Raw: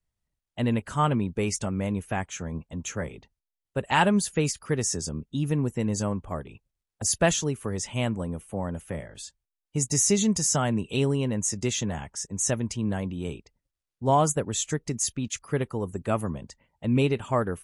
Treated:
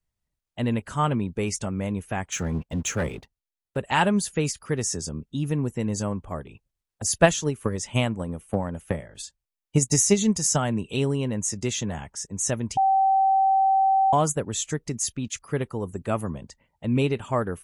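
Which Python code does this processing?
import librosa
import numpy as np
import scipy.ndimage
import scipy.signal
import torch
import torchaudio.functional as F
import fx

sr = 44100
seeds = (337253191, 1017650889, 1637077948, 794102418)

y = fx.leveller(x, sr, passes=2, at=(2.32, 3.77))
y = fx.transient(y, sr, attack_db=9, sustain_db=-2, at=(7.22, 10.67), fade=0.02)
y = fx.edit(y, sr, fx.bleep(start_s=12.77, length_s=1.36, hz=773.0, db=-16.5), tone=tone)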